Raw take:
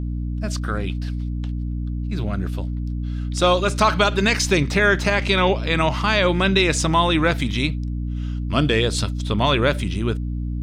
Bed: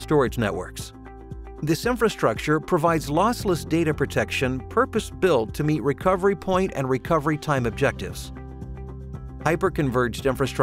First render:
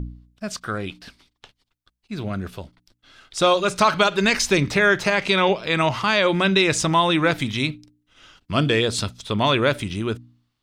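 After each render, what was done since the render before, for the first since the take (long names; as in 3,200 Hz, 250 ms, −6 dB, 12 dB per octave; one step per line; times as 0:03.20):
hum removal 60 Hz, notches 5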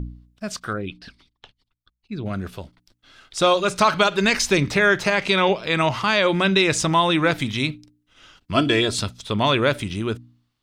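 0:00.73–0:02.26: spectral envelope exaggerated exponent 1.5
0:08.54–0:08.95: comb filter 3 ms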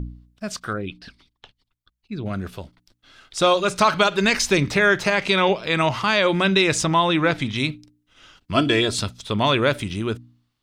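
0:06.84–0:07.56: high-frequency loss of the air 59 metres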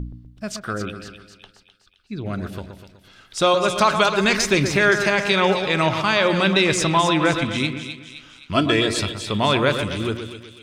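echo with a time of its own for lows and highs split 2,300 Hz, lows 124 ms, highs 260 ms, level −8 dB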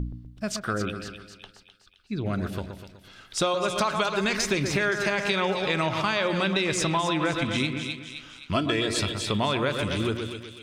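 downward compressor, threshold −22 dBFS, peak gain reduction 10 dB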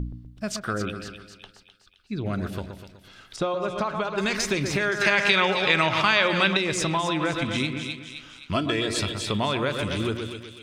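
0:03.36–0:04.18: low-pass filter 1,200 Hz 6 dB per octave
0:05.01–0:06.57: parametric band 2,300 Hz +8 dB 2.4 octaves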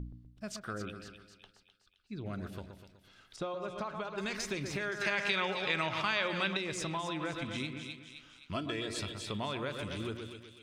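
level −11.5 dB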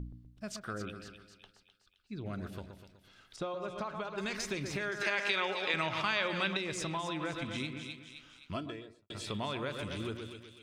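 0:05.03–0:05.74: high-pass filter 230 Hz 24 dB per octave
0:08.41–0:09.10: fade out and dull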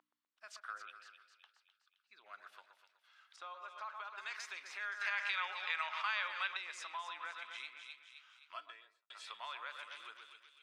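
high-pass filter 1,100 Hz 24 dB per octave
spectral tilt −4 dB per octave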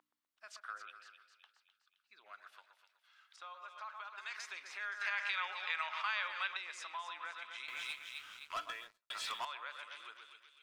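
0:02.33–0:04.36: low-shelf EQ 480 Hz −9 dB
0:07.68–0:09.45: leveller curve on the samples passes 3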